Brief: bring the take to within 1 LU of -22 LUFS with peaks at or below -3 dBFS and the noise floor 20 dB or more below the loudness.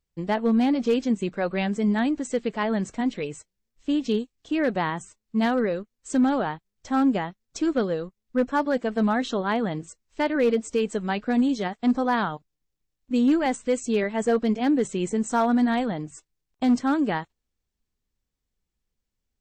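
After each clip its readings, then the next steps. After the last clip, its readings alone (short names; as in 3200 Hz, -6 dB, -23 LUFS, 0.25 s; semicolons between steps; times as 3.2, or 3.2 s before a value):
clipped 0.4%; flat tops at -14.5 dBFS; loudness -25.0 LUFS; peak -14.5 dBFS; loudness target -22.0 LUFS
-> clip repair -14.5 dBFS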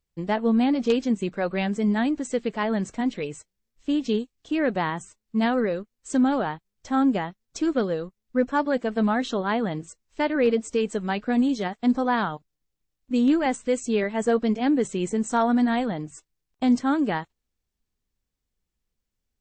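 clipped 0.0%; loudness -25.0 LUFS; peak -7.0 dBFS; loudness target -22.0 LUFS
-> gain +3 dB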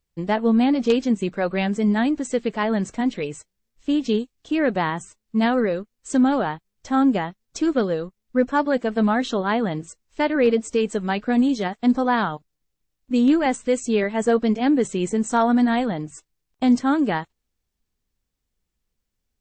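loudness -22.0 LUFS; peak -4.0 dBFS; noise floor -79 dBFS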